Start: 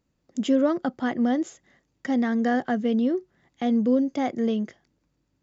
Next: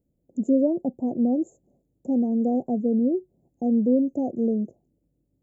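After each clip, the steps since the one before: inverse Chebyshev band-stop 1.3–4.7 kHz, stop band 50 dB; trim +1 dB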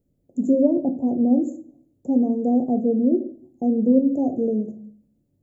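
simulated room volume 54 m³, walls mixed, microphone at 0.32 m; trim +2 dB

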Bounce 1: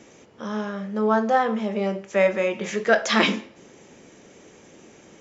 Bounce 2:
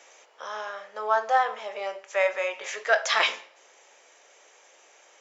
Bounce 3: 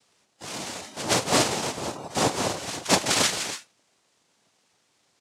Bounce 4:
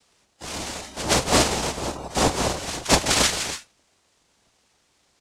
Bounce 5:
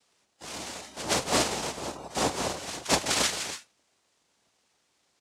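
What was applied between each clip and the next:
in parallel at -3 dB: gain riding within 4 dB 2 s; on the sum: high-pass 610 Hz 24 dB/octave; trim -5.5 dB
loudspeakers at several distances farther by 57 m -9 dB, 97 m -11 dB; noise-vocoded speech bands 2; spectral noise reduction 12 dB
octave divider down 2 oct, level -2 dB; trim +2.5 dB
high-pass 160 Hz 6 dB/octave; trim -6 dB

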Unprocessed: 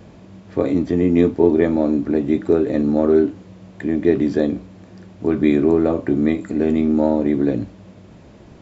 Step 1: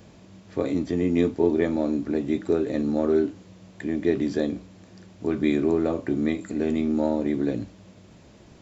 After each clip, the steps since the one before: treble shelf 3.2 kHz +10.5 dB; trim -7 dB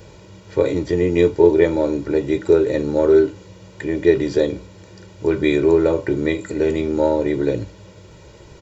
comb 2.1 ms, depth 77%; trim +6 dB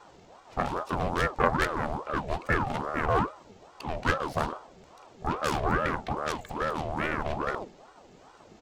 self-modulated delay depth 1 ms; ring modulator with a swept carrier 610 Hz, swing 55%, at 2.4 Hz; trim -7.5 dB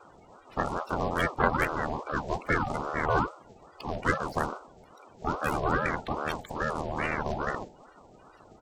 coarse spectral quantiser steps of 30 dB

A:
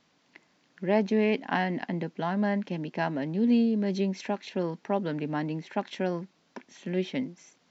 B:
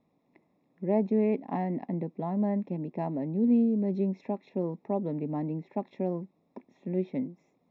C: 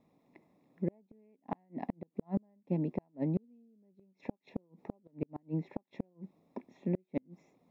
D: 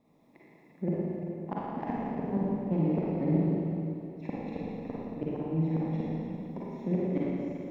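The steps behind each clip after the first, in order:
boxcar filter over 29 samples
inverted gate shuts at -23 dBFS, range -40 dB; trim +2 dB
self-modulated delay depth 0.11 ms; Schroeder reverb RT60 3 s, DRR -7.5 dB

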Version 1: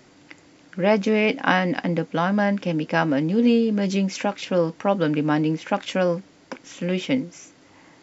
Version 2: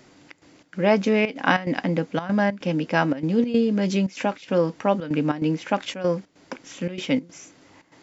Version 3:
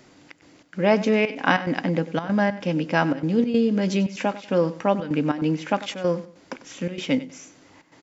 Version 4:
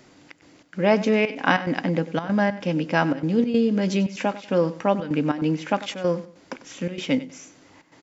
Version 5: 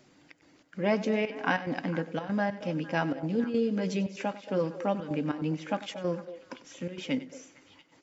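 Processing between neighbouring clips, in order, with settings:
trance gate "xxx.xx.xx" 144 bpm -12 dB
feedback delay 96 ms, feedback 28%, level -16 dB
no audible change
coarse spectral quantiser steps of 15 dB; repeats whose band climbs or falls 228 ms, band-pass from 520 Hz, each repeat 1.4 oct, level -10.5 dB; trim -7.5 dB

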